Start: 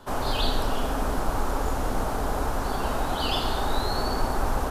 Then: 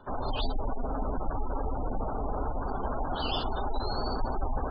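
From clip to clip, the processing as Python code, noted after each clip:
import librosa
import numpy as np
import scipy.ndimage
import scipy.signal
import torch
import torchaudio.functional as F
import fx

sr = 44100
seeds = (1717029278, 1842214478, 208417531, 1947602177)

y = fx.spec_gate(x, sr, threshold_db=-20, keep='strong')
y = F.gain(torch.from_numpy(y), -4.0).numpy()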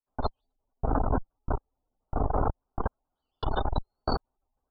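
y = fx.rider(x, sr, range_db=10, speed_s=0.5)
y = fx.step_gate(y, sr, bpm=162, pattern='..x......xxxx.', floor_db=-60.0, edge_ms=4.5)
y = fx.transformer_sat(y, sr, knee_hz=120.0)
y = F.gain(torch.from_numpy(y), 8.5).numpy()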